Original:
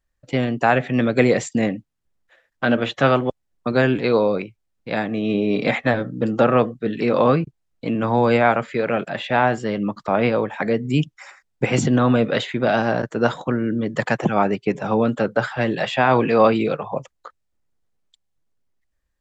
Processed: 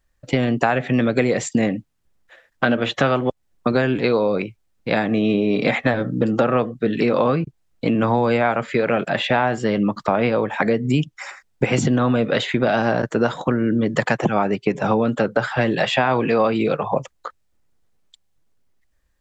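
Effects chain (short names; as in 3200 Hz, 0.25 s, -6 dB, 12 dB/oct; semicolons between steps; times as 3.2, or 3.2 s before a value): compressor 5:1, threshold -23 dBFS, peak gain reduction 12 dB; gain +7.5 dB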